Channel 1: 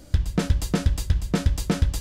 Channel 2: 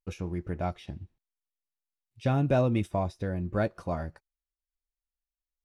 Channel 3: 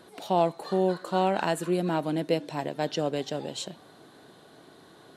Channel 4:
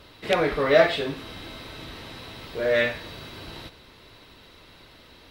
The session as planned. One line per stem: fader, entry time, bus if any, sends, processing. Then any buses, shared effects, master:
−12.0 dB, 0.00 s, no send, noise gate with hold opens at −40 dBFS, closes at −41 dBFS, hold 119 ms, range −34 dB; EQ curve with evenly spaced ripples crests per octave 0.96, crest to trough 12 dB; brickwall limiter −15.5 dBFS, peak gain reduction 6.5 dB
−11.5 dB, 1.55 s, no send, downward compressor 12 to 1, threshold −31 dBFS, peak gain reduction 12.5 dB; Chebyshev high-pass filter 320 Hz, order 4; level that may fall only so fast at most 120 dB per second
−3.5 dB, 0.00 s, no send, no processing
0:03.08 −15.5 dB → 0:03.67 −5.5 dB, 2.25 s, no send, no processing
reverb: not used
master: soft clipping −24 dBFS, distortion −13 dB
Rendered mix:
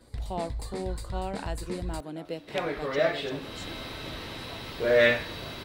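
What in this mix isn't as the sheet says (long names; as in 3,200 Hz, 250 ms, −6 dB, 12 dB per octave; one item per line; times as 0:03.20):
stem 3 −3.5 dB → −10.0 dB
stem 4 −15.5 dB → −8.5 dB
master: missing soft clipping −24 dBFS, distortion −13 dB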